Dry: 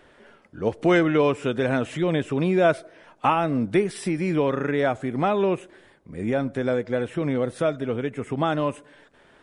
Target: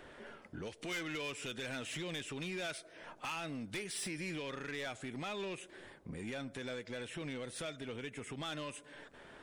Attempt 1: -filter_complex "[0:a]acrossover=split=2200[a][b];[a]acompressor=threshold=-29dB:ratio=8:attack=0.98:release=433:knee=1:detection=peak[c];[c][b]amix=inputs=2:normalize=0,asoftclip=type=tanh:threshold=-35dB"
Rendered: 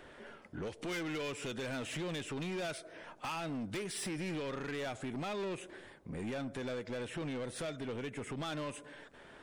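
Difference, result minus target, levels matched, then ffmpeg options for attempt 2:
compressor: peak gain reduction -6.5 dB
-filter_complex "[0:a]acrossover=split=2200[a][b];[a]acompressor=threshold=-36.5dB:ratio=8:attack=0.98:release=433:knee=1:detection=peak[c];[c][b]amix=inputs=2:normalize=0,asoftclip=type=tanh:threshold=-35dB"

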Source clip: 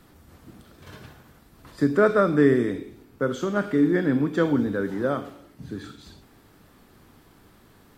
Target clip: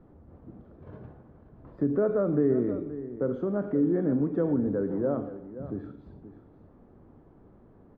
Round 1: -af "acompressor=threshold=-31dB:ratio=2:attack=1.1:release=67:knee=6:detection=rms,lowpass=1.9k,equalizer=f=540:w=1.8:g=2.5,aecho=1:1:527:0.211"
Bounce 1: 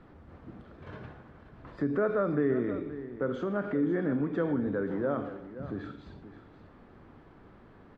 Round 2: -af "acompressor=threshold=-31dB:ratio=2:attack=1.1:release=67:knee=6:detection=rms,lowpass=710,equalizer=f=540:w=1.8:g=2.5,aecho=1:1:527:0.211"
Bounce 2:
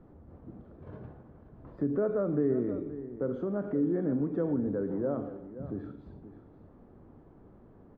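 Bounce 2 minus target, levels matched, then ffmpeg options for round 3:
compressor: peak gain reduction +4 dB
-af "acompressor=threshold=-23.5dB:ratio=2:attack=1.1:release=67:knee=6:detection=rms,lowpass=710,equalizer=f=540:w=1.8:g=2.5,aecho=1:1:527:0.211"

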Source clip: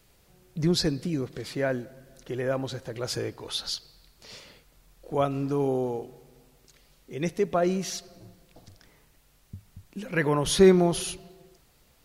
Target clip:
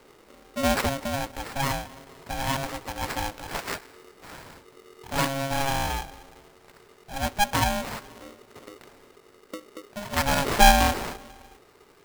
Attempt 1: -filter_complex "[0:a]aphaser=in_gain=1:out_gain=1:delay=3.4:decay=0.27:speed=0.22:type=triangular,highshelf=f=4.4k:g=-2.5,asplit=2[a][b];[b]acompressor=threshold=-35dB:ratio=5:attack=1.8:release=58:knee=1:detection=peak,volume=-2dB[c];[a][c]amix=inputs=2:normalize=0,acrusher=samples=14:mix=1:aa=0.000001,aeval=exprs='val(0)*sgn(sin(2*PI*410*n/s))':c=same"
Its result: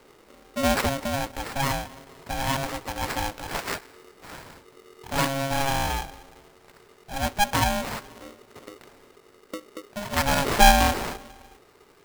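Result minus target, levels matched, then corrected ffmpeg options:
compressor: peak gain reduction -9 dB
-filter_complex "[0:a]aphaser=in_gain=1:out_gain=1:delay=3.4:decay=0.27:speed=0.22:type=triangular,highshelf=f=4.4k:g=-2.5,asplit=2[a][b];[b]acompressor=threshold=-46.5dB:ratio=5:attack=1.8:release=58:knee=1:detection=peak,volume=-2dB[c];[a][c]amix=inputs=2:normalize=0,acrusher=samples=14:mix=1:aa=0.000001,aeval=exprs='val(0)*sgn(sin(2*PI*410*n/s))':c=same"

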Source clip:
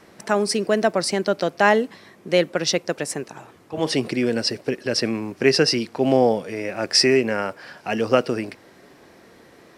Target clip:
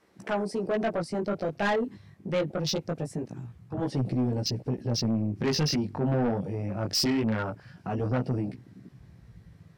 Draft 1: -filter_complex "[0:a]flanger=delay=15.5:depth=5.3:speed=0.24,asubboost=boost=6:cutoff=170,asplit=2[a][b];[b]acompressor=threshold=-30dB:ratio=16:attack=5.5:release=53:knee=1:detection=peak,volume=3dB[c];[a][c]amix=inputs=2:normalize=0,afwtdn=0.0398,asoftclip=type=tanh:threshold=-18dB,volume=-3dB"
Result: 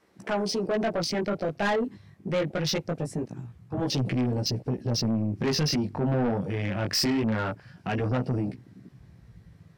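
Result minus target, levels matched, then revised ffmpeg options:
compressor: peak gain reduction -7.5 dB
-filter_complex "[0:a]flanger=delay=15.5:depth=5.3:speed=0.24,asubboost=boost=6:cutoff=170,asplit=2[a][b];[b]acompressor=threshold=-38dB:ratio=16:attack=5.5:release=53:knee=1:detection=peak,volume=3dB[c];[a][c]amix=inputs=2:normalize=0,afwtdn=0.0398,asoftclip=type=tanh:threshold=-18dB,volume=-3dB"

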